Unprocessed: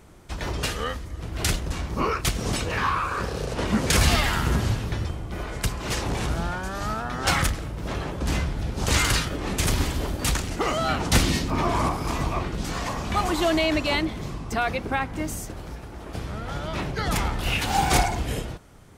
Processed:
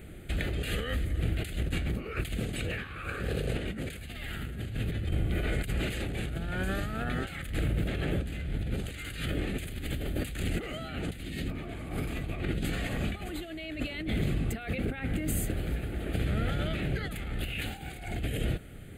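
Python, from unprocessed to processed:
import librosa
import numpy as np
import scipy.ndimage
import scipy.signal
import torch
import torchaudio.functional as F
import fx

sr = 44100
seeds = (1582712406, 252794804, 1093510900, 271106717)

y = fx.over_compress(x, sr, threshold_db=-32.0, ratio=-1.0)
y = fx.fixed_phaser(y, sr, hz=2400.0, stages=4)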